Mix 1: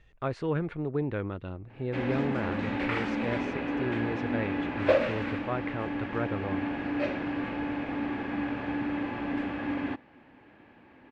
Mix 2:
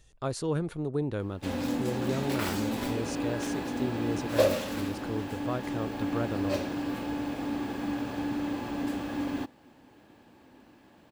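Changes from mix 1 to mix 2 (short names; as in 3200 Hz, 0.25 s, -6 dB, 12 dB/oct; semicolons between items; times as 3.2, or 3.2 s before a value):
background: entry -0.50 s; master: remove synth low-pass 2200 Hz, resonance Q 2.1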